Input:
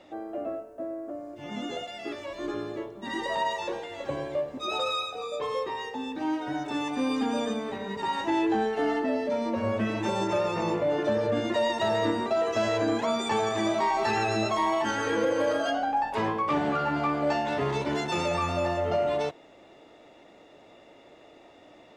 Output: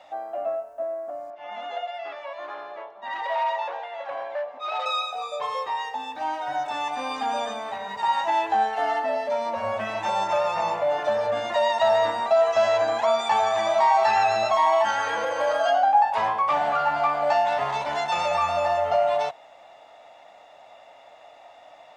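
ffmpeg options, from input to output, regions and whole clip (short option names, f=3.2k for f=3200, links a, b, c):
-filter_complex "[0:a]asettb=1/sr,asplit=3[a][b][c];[a]atrim=end=1.304[d];[b]atrim=start=1.3:end=4.86,asetpts=PTS-STARTPTS,afade=t=in:d=0.004:c=qsin,afade=t=out:st=3.556:d=0.004:c=qsin,volume=28dB,asoftclip=hard,volume=-28dB,highpass=390,lowpass=2.7k[e];[c]atrim=start=4.856[f];[d][e]acrossfade=d=0.004:c1=hsin:c2=qsin[g];[g][f]acrossfade=d=0.004:c1=qsin:c2=hsin,acrossover=split=7000[h][i];[i]acompressor=threshold=-59dB:ratio=4:attack=1:release=60[j];[h][j]amix=inputs=2:normalize=0,lowshelf=f=510:t=q:w=3:g=-11.5,volume=2.5dB"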